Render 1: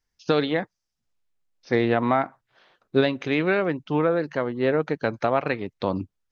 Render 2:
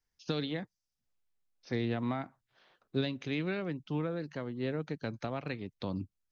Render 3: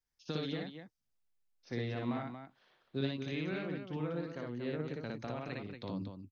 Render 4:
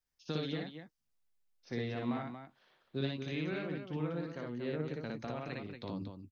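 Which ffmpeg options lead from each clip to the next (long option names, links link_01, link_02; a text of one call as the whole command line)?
ffmpeg -i in.wav -filter_complex "[0:a]acrossover=split=260|3000[link_01][link_02][link_03];[link_02]acompressor=threshold=-53dB:ratio=1.5[link_04];[link_01][link_04][link_03]amix=inputs=3:normalize=0,volume=-5.5dB" out.wav
ffmpeg -i in.wav -af "aecho=1:1:58.31|233.2:0.891|0.447,volume=-6dB" out.wav
ffmpeg -i in.wav -filter_complex "[0:a]asplit=2[link_01][link_02];[link_02]adelay=13,volume=-13.5dB[link_03];[link_01][link_03]amix=inputs=2:normalize=0" out.wav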